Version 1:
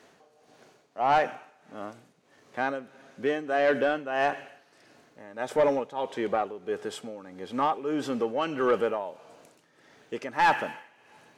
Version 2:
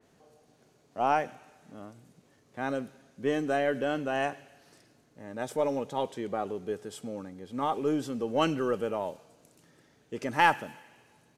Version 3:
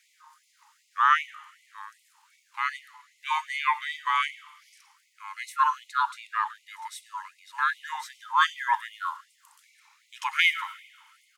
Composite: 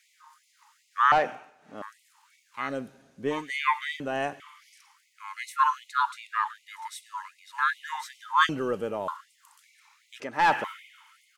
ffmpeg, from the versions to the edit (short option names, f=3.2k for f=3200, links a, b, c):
-filter_complex "[0:a]asplit=2[a][b];[1:a]asplit=3[c][d][e];[2:a]asplit=6[f][g][h][i][j][k];[f]atrim=end=1.122[l];[a]atrim=start=1.118:end=1.822[m];[g]atrim=start=1.818:end=2.77[n];[c]atrim=start=2.53:end=3.51[o];[h]atrim=start=3.27:end=4.002[p];[d]atrim=start=3.998:end=4.402[q];[i]atrim=start=4.398:end=8.492[r];[e]atrim=start=8.488:end=9.082[s];[j]atrim=start=9.078:end=10.202[t];[b]atrim=start=10.198:end=10.642[u];[k]atrim=start=10.638[v];[l][m]acrossfade=d=0.004:c1=hsin:c2=hsin[w];[w][n]acrossfade=d=0.004:c1=hsin:c2=hsin[x];[x][o]acrossfade=d=0.24:c1=tri:c2=tri[y];[y][p]acrossfade=d=0.24:c1=tri:c2=tri[z];[z][q]acrossfade=d=0.004:c1=hsin:c2=hsin[aa];[aa][r]acrossfade=d=0.004:c1=hsin:c2=hsin[ab];[ab][s]acrossfade=d=0.004:c1=hsin:c2=hsin[ac];[ac][t]acrossfade=d=0.004:c1=hsin:c2=hsin[ad];[ad][u]acrossfade=d=0.004:c1=hsin:c2=hsin[ae];[ae][v]acrossfade=d=0.004:c1=hsin:c2=hsin"